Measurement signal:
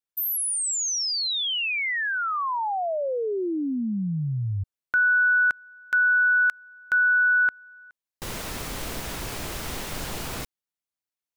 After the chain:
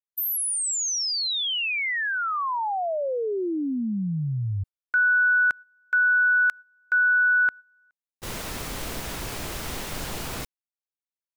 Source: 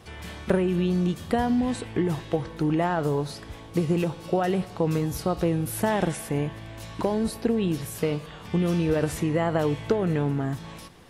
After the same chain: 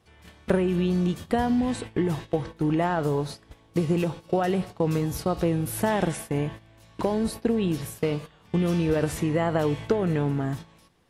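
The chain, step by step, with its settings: gate -35 dBFS, range -14 dB

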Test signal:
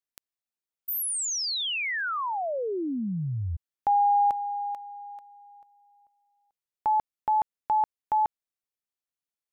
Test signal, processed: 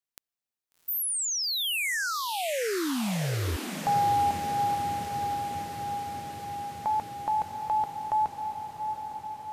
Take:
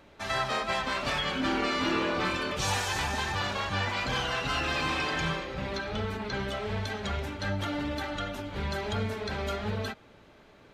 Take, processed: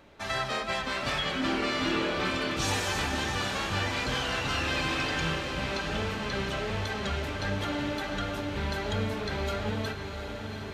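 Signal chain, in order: dynamic bell 970 Hz, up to -4 dB, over -37 dBFS, Q 1.7; on a send: echo that smears into a reverb 735 ms, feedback 73%, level -8 dB

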